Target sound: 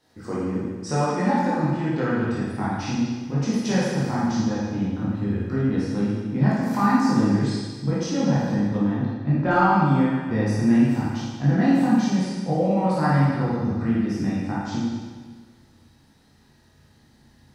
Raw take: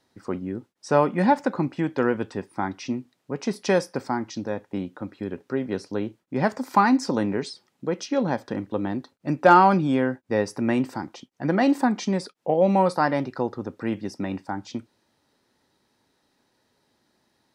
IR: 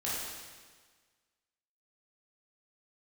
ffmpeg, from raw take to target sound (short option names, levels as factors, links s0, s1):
-filter_complex "[0:a]asettb=1/sr,asplit=3[s0][s1][s2];[s0]atrim=end=8.884[s3];[s1]atrim=start=8.88:end=9.51,asetpts=PTS-STARTPTS,afade=t=in:d=0.004:c=qsin,afade=t=out:st=0.626:d=0.004:c=qsin,lowpass=3300[s4];[s2]atrim=start=9.506[s5];[s3][s4]acrossfade=d=0.004:c1=hsin:c2=qsin[s6];[s6][s5]acrossfade=d=0.004:c1=qsin:c2=hsin,asubboost=boost=5.5:cutoff=190,acompressor=threshold=0.0224:ratio=2[s7];[1:a]atrim=start_sample=2205[s8];[s7][s8]afir=irnorm=-1:irlink=0,volume=1.5"